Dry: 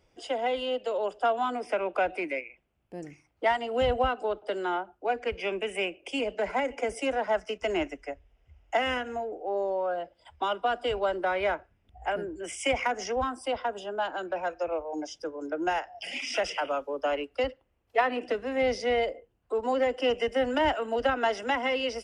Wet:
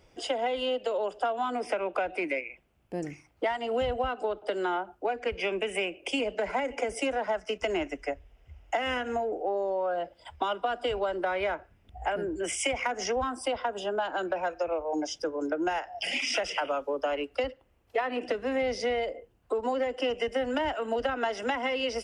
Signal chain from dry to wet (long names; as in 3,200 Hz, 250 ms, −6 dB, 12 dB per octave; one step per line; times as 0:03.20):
downward compressor, threshold −33 dBFS, peak gain reduction 13.5 dB
level +6.5 dB